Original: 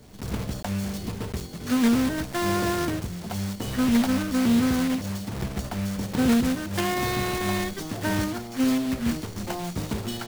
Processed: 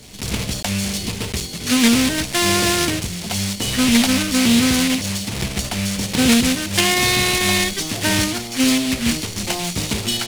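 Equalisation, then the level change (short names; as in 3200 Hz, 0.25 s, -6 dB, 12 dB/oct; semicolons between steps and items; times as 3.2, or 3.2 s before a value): band shelf 4900 Hz +11 dB 2.8 oct; +5.0 dB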